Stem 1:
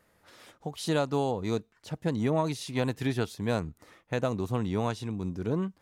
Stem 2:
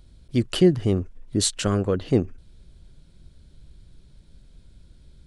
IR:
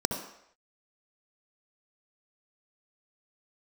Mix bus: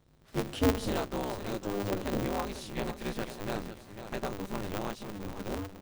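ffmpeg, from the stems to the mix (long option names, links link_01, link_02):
-filter_complex "[0:a]acrusher=bits=8:mix=0:aa=0.5,volume=-6dB,asplit=3[link_01][link_02][link_03];[link_02]volume=-10dB[link_04];[1:a]flanger=delay=17:depth=2.9:speed=1.4,volume=-11dB,asplit=3[link_05][link_06][link_07];[link_05]atrim=end=0.94,asetpts=PTS-STARTPTS,afade=type=out:start_time=0.936:duration=0.004:curve=hsin[link_08];[link_06]atrim=start=0.94:end=1.63,asetpts=PTS-STARTPTS,volume=0[link_09];[link_07]atrim=start=1.63,asetpts=PTS-STARTPTS,afade=type=in:duration=0.004:curve=hsin[link_10];[link_08][link_09][link_10]concat=n=3:v=0:a=1,asplit=2[link_11][link_12];[link_12]volume=-15.5dB[link_13];[link_03]apad=whole_len=232166[link_14];[link_11][link_14]sidechaincompress=threshold=-37dB:ratio=8:attack=46:release=576[link_15];[2:a]atrim=start_sample=2205[link_16];[link_13][link_16]afir=irnorm=-1:irlink=0[link_17];[link_04]aecho=0:1:497|994|1491|1988:1|0.31|0.0961|0.0298[link_18];[link_01][link_15][link_17][link_18]amix=inputs=4:normalize=0,asubboost=boost=2.5:cutoff=90,aeval=exprs='val(0)*sgn(sin(2*PI*100*n/s))':channel_layout=same"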